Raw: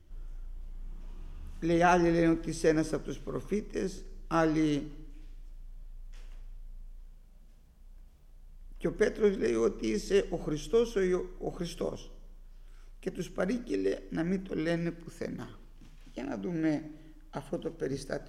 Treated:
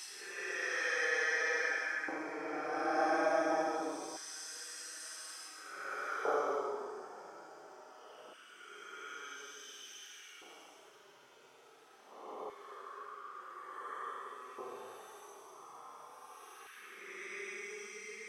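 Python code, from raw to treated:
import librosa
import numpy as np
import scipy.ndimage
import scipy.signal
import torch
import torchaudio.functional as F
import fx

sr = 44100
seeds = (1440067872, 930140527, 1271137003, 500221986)

y = fx.graphic_eq_31(x, sr, hz=(400, 800, 1250), db=(7, 10, 7))
y = fx.paulstretch(y, sr, seeds[0], factor=19.0, window_s=0.05, from_s=2.62)
y = fx.filter_lfo_highpass(y, sr, shape='square', hz=0.24, low_hz=740.0, high_hz=1600.0, q=1.6)
y = y * librosa.db_to_amplitude(-3.0)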